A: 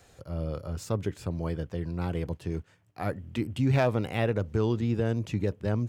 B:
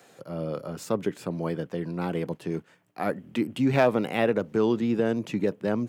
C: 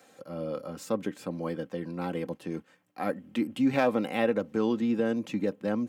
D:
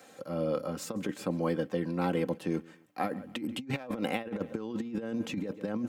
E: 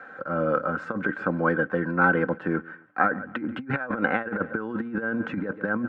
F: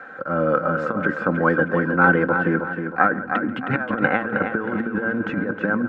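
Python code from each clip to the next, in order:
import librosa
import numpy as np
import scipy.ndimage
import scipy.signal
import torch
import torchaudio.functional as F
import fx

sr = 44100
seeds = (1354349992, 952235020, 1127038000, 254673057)

y1 = scipy.signal.sosfilt(scipy.signal.butter(4, 170.0, 'highpass', fs=sr, output='sos'), x)
y1 = fx.peak_eq(y1, sr, hz=5800.0, db=-4.0, octaves=1.5)
y1 = y1 * librosa.db_to_amplitude(5.0)
y2 = y1 + 0.51 * np.pad(y1, (int(3.8 * sr / 1000.0), 0))[:len(y1)]
y2 = y2 * librosa.db_to_amplitude(-4.0)
y3 = fx.echo_feedback(y2, sr, ms=137, feedback_pct=37, wet_db=-23.0)
y3 = fx.over_compress(y3, sr, threshold_db=-31.0, ratio=-0.5)
y4 = fx.lowpass_res(y3, sr, hz=1500.0, q=12.0)
y4 = y4 * librosa.db_to_amplitude(4.5)
y5 = fx.echo_feedback(y4, sr, ms=315, feedback_pct=40, wet_db=-7)
y5 = y5 * librosa.db_to_amplitude(4.5)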